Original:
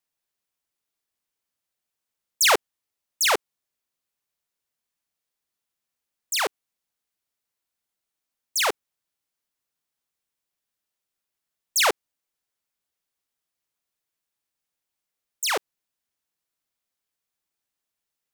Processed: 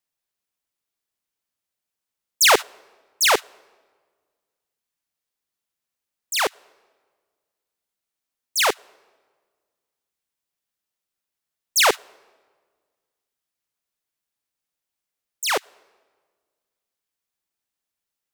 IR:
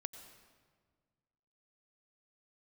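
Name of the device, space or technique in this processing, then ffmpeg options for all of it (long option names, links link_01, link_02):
keyed gated reverb: -filter_complex "[0:a]asplit=3[link_01][link_02][link_03];[1:a]atrim=start_sample=2205[link_04];[link_02][link_04]afir=irnorm=-1:irlink=0[link_05];[link_03]apad=whole_len=808781[link_06];[link_05][link_06]sidechaingate=range=-16dB:threshold=-24dB:ratio=16:detection=peak,volume=3dB[link_07];[link_01][link_07]amix=inputs=2:normalize=0,volume=-2dB"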